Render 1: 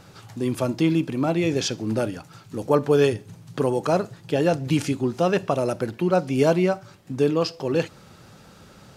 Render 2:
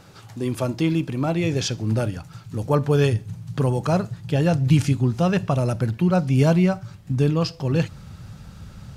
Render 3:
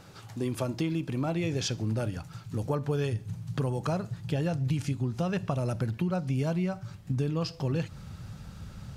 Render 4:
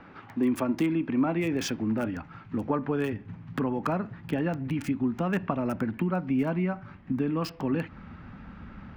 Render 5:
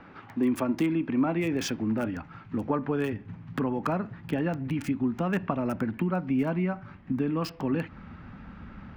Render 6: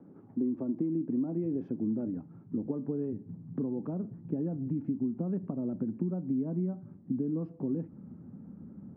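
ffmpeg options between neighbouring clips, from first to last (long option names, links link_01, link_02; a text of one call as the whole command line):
ffmpeg -i in.wav -af "asubboost=boost=8:cutoff=130" out.wav
ffmpeg -i in.wav -af "acompressor=threshold=-23dB:ratio=6,volume=-3dB" out.wav
ffmpeg -i in.wav -filter_complex "[0:a]equalizer=frequency=125:width_type=o:width=1:gain=-11,equalizer=frequency=250:width_type=o:width=1:gain=12,equalizer=frequency=500:width_type=o:width=1:gain=-3,equalizer=frequency=1000:width_type=o:width=1:gain=5,equalizer=frequency=2000:width_type=o:width=1:gain=7,equalizer=frequency=4000:width_type=o:width=1:gain=-5,acrossover=split=290|870|3500[link_01][link_02][link_03][link_04];[link_04]acrusher=bits=6:mix=0:aa=0.000001[link_05];[link_01][link_02][link_03][link_05]amix=inputs=4:normalize=0" out.wav
ffmpeg -i in.wav -af anull out.wav
ffmpeg -i in.wav -af "acompressor=threshold=-27dB:ratio=6,asuperpass=centerf=240:order=4:qfactor=0.78" out.wav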